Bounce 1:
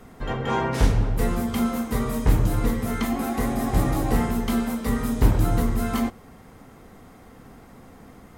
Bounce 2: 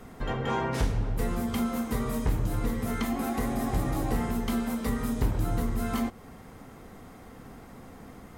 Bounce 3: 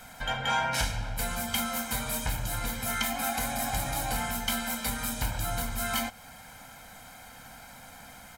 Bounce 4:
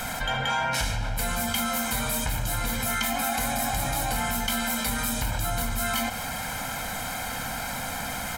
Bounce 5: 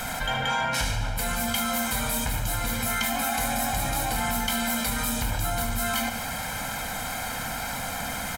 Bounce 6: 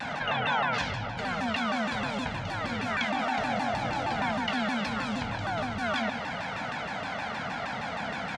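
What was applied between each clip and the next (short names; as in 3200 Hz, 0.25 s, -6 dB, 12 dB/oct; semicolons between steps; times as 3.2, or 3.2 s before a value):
compressor 2:1, threshold -29 dBFS, peak gain reduction 10 dB
tilt shelf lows -9.5 dB, about 820 Hz; comb 1.3 ms, depth 88%; gain -1.5 dB
fast leveller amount 70%
feedback echo 73 ms, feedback 56%, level -11.5 dB
BPF 130–4600 Hz; air absorption 120 m; shaped vibrato saw down 6.4 Hz, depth 250 cents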